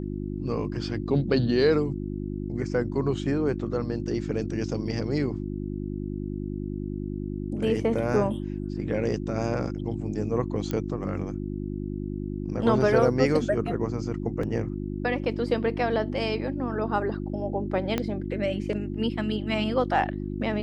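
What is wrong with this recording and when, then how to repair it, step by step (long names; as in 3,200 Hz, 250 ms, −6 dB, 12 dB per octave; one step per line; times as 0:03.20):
mains hum 50 Hz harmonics 7 −32 dBFS
0:10.71: click −16 dBFS
0:14.43: drop-out 3.7 ms
0:17.98: click −12 dBFS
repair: click removal
hum removal 50 Hz, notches 7
repair the gap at 0:14.43, 3.7 ms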